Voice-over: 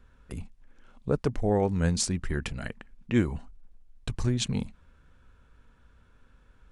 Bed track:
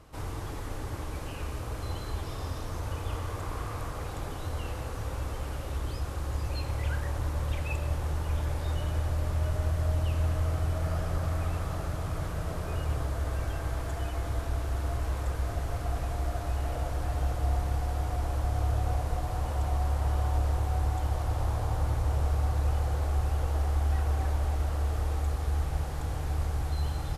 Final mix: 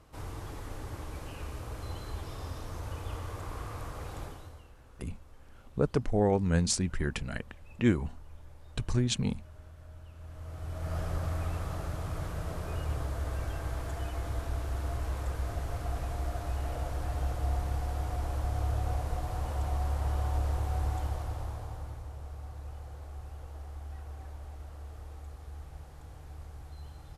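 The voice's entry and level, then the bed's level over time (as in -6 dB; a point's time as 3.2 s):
4.70 s, -1.0 dB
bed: 4.23 s -4.5 dB
4.72 s -22 dB
10.13 s -22 dB
10.98 s -3 dB
20.98 s -3 dB
22.13 s -15.5 dB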